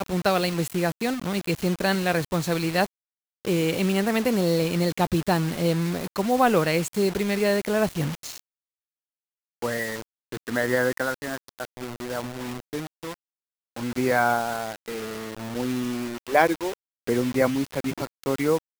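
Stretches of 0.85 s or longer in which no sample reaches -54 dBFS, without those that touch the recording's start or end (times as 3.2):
8.4–9.62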